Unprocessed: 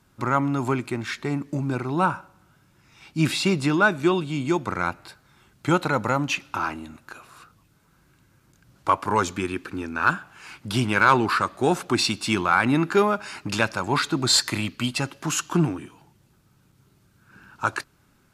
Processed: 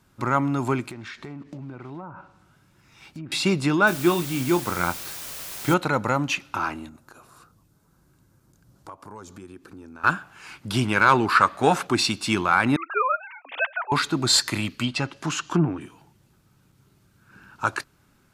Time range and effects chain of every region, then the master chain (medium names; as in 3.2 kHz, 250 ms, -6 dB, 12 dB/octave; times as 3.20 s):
0.90–3.32 s: block-companded coder 5-bit + low-pass that closes with the level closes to 880 Hz, closed at -18 dBFS + compression 5:1, threshold -35 dBFS
3.87–5.74 s: doubling 23 ms -9 dB + word length cut 6-bit, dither triangular
6.89–10.04 s: peaking EQ 2.4 kHz -10.5 dB 1.6 oct + compression 3:1, threshold -43 dBFS
11.35–11.87 s: peaking EQ 1.5 kHz +7 dB 2.8 oct + band-stop 360 Hz, Q 6.8
12.76–13.92 s: formants replaced by sine waves + high-pass 600 Hz 24 dB/octave
14.70–15.81 s: low-pass that closes with the level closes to 1.3 kHz, closed at -16.5 dBFS + treble shelf 5.2 kHz +4 dB
whole clip: none